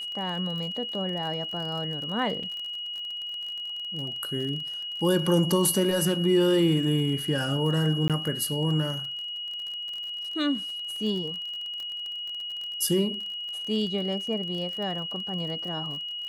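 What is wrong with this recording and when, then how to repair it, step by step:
crackle 35 per s -34 dBFS
whine 2.9 kHz -32 dBFS
2.43 s: dropout 4.4 ms
8.08–8.10 s: dropout 17 ms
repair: de-click; band-stop 2.9 kHz, Q 30; interpolate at 2.43 s, 4.4 ms; interpolate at 8.08 s, 17 ms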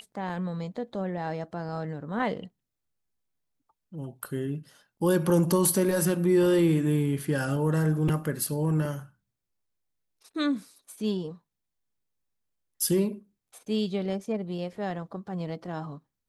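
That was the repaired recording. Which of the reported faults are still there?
nothing left

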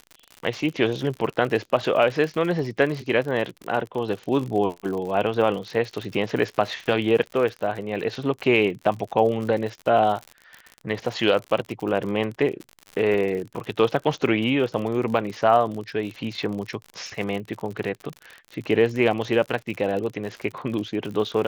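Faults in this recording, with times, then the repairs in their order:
crackle 57 per s -30 dBFS
13.14 s: dropout 3 ms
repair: de-click; interpolate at 13.14 s, 3 ms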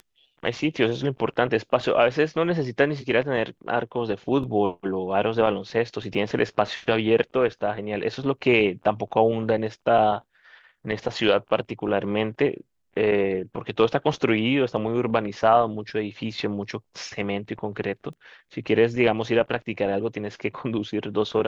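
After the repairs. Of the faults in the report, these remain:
nothing left

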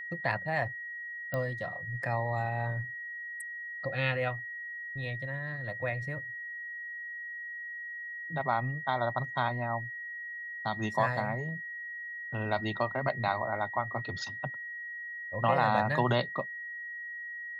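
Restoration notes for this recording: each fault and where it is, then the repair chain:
whine 1.9 kHz -38 dBFS
1.34 s: pop -20 dBFS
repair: de-click; band-stop 1.9 kHz, Q 30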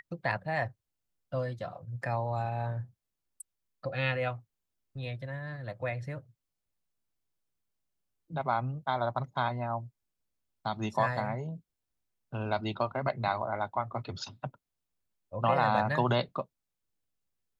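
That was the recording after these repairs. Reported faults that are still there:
nothing left

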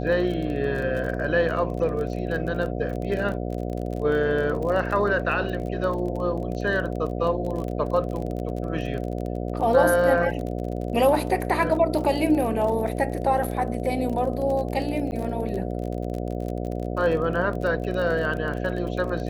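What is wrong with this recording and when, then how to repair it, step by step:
buzz 60 Hz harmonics 12 -29 dBFS
crackle 30 per s -30 dBFS
15.11–15.12 s: dropout 9.4 ms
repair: de-click; de-hum 60 Hz, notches 12; interpolate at 15.11 s, 9.4 ms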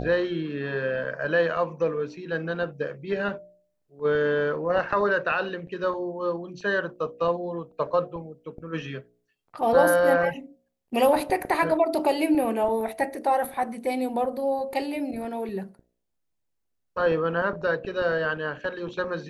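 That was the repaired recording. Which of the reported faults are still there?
nothing left

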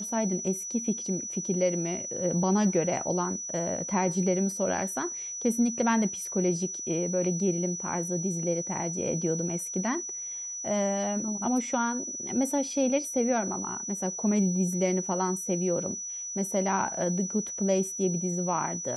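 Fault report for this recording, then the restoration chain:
whine 5.9 kHz -34 dBFS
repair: band-stop 5.9 kHz, Q 30

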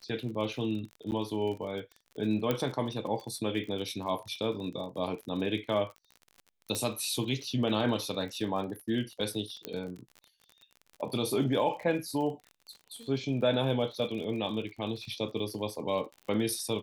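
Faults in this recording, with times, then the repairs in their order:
crackle 43 per s -39 dBFS
1.11–1.12 s: dropout 9.4 ms
2.51 s: pop -15 dBFS
6.75 s: pop -18 dBFS
9.65 s: pop -18 dBFS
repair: de-click; interpolate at 1.11 s, 9.4 ms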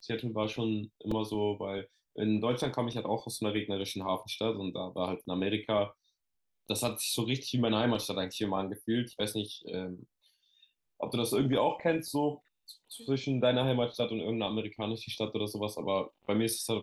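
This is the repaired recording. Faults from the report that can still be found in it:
nothing left

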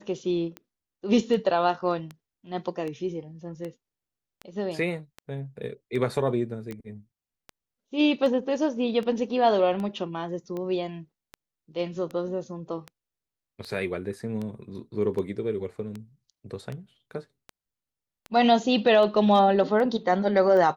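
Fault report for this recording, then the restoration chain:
tick 78 rpm -23 dBFS
6.71 s: pop -24 dBFS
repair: de-click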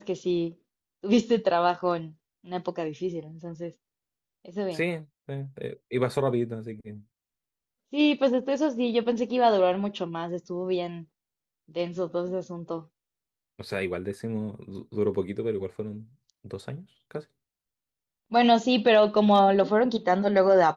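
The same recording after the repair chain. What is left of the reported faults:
nothing left

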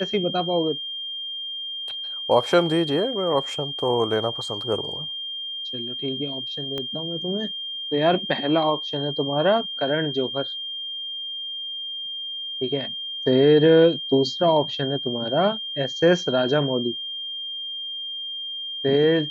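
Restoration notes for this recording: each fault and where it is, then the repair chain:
whine 3.2 kHz -29 dBFS
6.78 s: pop -17 dBFS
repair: de-click; band-stop 3.2 kHz, Q 30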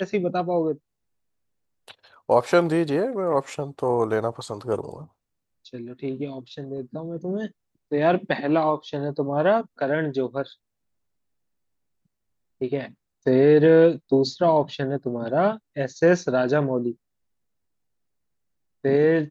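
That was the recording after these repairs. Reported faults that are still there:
6.78 s: pop

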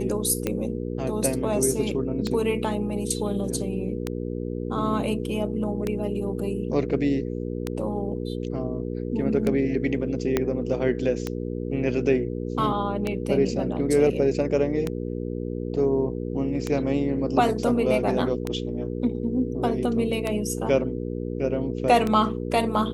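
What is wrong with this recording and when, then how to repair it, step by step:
hum 60 Hz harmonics 8 -30 dBFS
tick 33 1/3 rpm -12 dBFS
10.37 s: pop -8 dBFS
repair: de-click; de-hum 60 Hz, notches 8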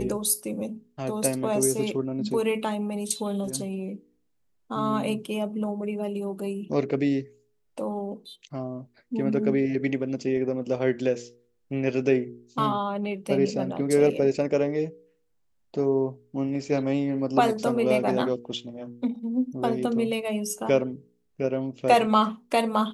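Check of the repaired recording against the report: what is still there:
10.37 s: pop

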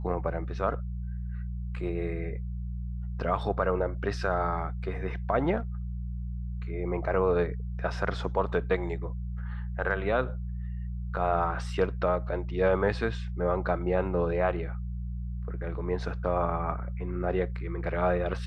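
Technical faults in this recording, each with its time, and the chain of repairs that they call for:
hum 60 Hz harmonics 3 -34 dBFS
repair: de-hum 60 Hz, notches 3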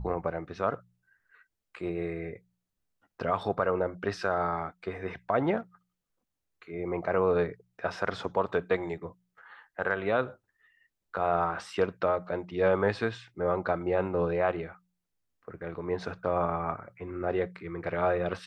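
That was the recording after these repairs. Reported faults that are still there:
nothing left

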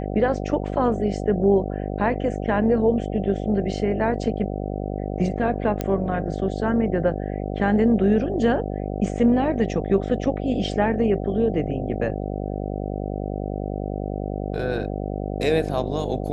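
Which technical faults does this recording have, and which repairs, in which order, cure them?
buzz 50 Hz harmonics 15 -28 dBFS
5.81 s: pop -12 dBFS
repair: de-click; de-hum 50 Hz, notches 15

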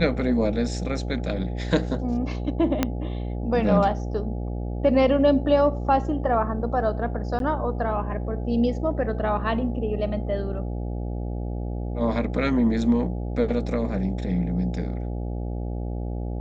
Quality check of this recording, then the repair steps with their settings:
buzz 60 Hz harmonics 14 -29 dBFS
2.83 s: pop -7 dBFS
7.39–7.40 s: dropout 12 ms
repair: de-click; de-hum 60 Hz, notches 14; interpolate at 7.39 s, 12 ms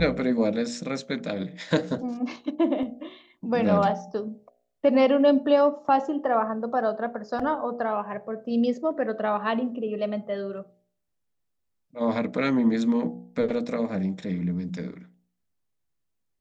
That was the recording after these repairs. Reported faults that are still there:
2.83 s: pop

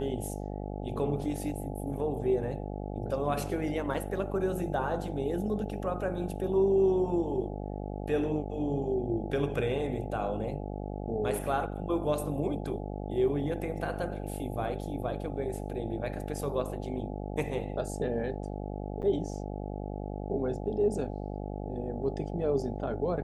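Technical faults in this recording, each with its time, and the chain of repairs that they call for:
buzz 50 Hz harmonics 17 -37 dBFS
3.94 s: dropout 3.7 ms
19.02–19.03 s: dropout 8.5 ms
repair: de-hum 50 Hz, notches 17; interpolate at 3.94 s, 3.7 ms; interpolate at 19.02 s, 8.5 ms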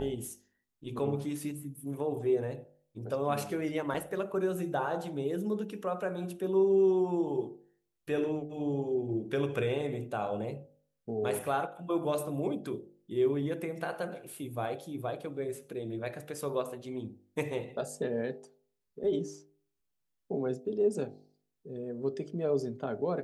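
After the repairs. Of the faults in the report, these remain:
nothing left

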